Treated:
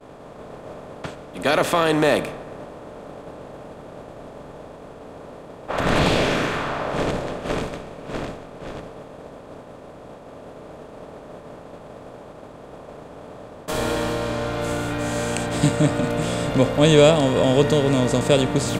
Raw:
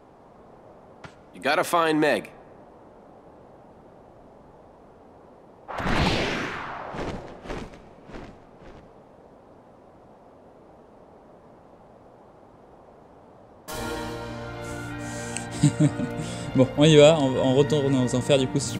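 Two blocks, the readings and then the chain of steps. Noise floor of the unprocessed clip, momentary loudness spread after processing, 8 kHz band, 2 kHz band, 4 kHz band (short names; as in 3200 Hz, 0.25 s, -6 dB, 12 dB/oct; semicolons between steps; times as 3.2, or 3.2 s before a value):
-52 dBFS, 22 LU, +3.5 dB, +4.0 dB, +3.0 dB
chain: per-bin compression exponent 0.6; expander -27 dBFS; gain -1 dB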